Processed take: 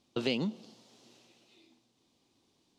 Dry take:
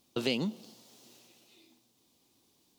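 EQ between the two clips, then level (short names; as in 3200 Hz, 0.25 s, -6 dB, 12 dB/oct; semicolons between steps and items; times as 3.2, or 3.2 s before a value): air absorption 73 m; 0.0 dB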